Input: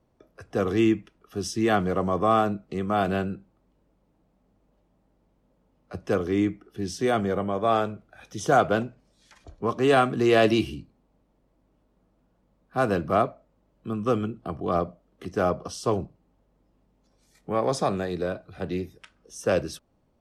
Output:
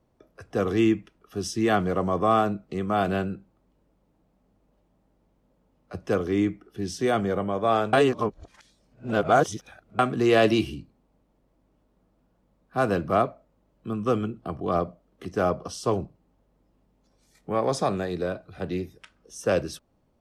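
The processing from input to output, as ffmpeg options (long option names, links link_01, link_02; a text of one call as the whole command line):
ffmpeg -i in.wav -filter_complex "[0:a]asplit=3[link_01][link_02][link_03];[link_01]atrim=end=7.932[link_04];[link_02]atrim=start=7.928:end=9.992,asetpts=PTS-STARTPTS,areverse[link_05];[link_03]atrim=start=9.988[link_06];[link_04][link_05]acrossfade=duration=0.004:curve1=hsin:curve2=hsin[link_07];[link_07][link_06]acrossfade=duration=0.004:curve1=hsin:curve2=hsin" out.wav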